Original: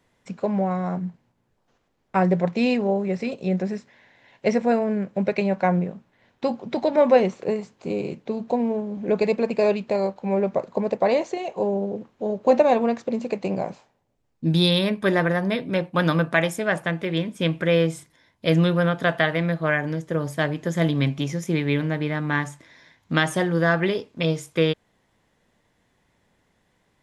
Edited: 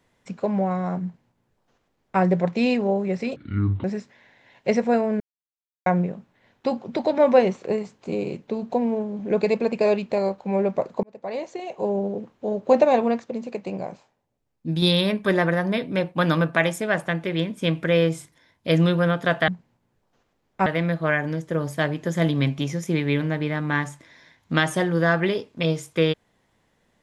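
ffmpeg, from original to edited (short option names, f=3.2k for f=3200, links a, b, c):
-filter_complex "[0:a]asplit=10[a][b][c][d][e][f][g][h][i][j];[a]atrim=end=3.364[k];[b]atrim=start=3.36:end=3.62,asetpts=PTS-STARTPTS,asetrate=23814,aresample=44100,atrim=end_sample=21233,asetpts=PTS-STARTPTS[l];[c]atrim=start=3.616:end=4.98,asetpts=PTS-STARTPTS,afade=t=out:st=1.36:d=0.004:c=hsin[m];[d]atrim=start=4.98:end=5.64,asetpts=PTS-STARTPTS,volume=0[n];[e]atrim=start=5.64:end=10.81,asetpts=PTS-STARTPTS,afade=t=in:d=0.004:c=hsin,afade=t=out:st=5.166:d=0.004:c=hsin[o];[f]atrim=start=10.81:end=12.972,asetpts=PTS-STARTPTS,afade=t=in:d=0.94[p];[g]atrim=start=12.968:end=14.602,asetpts=PTS-STARTPTS,volume=-4.5dB[q];[h]atrim=start=14.598:end=19.262[r];[i]atrim=start=1.028:end=2.212[s];[j]atrim=start=19.258[t];[k][l]acrossfade=d=0.004:c1=hsin:c2=hsin[u];[m][n][o][p]concat=n=4:v=0:a=1[v];[u][v]acrossfade=d=0.004:c1=hsin:c2=hsin[w];[w][q]acrossfade=d=0.004:c1=hsin:c2=hsin[x];[x][r]acrossfade=d=0.004:c1=hsin:c2=hsin[y];[y][s]acrossfade=d=0.004:c1=hsin:c2=hsin[z];[z][t]acrossfade=d=0.004:c1=hsin:c2=hsin"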